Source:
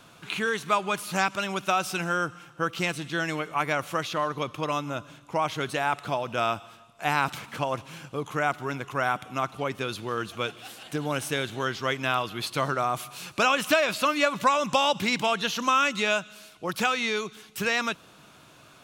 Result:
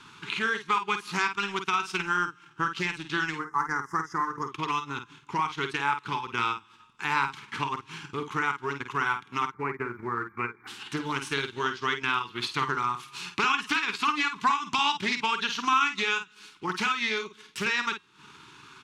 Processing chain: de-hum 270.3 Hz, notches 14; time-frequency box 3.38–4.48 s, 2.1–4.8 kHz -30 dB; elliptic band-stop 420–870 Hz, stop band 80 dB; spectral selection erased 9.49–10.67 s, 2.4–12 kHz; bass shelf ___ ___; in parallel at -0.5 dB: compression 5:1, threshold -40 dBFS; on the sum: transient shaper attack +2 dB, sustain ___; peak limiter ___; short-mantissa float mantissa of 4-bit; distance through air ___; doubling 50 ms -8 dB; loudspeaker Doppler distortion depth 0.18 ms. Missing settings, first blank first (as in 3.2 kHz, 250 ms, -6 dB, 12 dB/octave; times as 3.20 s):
260 Hz, -9 dB, -11 dB, -13.5 dBFS, 72 m